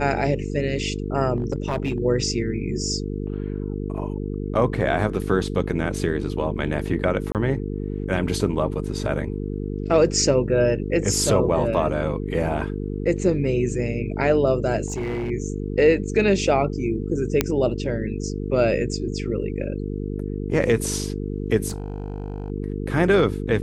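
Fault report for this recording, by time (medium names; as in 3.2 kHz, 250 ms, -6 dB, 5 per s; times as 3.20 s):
buzz 50 Hz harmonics 9 -28 dBFS
1.36–1.98 s: clipped -18.5 dBFS
7.32–7.35 s: dropout 28 ms
14.86–15.30 s: clipped -23 dBFS
17.41 s: pop -3 dBFS
21.68–22.50 s: clipped -24.5 dBFS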